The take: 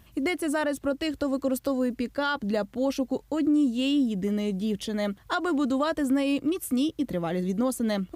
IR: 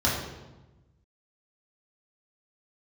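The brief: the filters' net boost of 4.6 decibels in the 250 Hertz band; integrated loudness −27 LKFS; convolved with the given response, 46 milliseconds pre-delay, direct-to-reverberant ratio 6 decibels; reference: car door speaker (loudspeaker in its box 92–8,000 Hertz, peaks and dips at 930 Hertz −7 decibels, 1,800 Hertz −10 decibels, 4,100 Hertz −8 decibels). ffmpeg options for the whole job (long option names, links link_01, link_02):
-filter_complex "[0:a]equalizer=frequency=250:width_type=o:gain=5.5,asplit=2[link_01][link_02];[1:a]atrim=start_sample=2205,adelay=46[link_03];[link_02][link_03]afir=irnorm=-1:irlink=0,volume=-19.5dB[link_04];[link_01][link_04]amix=inputs=2:normalize=0,highpass=92,equalizer=frequency=930:width_type=q:width=4:gain=-7,equalizer=frequency=1800:width_type=q:width=4:gain=-10,equalizer=frequency=4100:width_type=q:width=4:gain=-8,lowpass=frequency=8000:width=0.5412,lowpass=frequency=8000:width=1.3066,volume=-5.5dB"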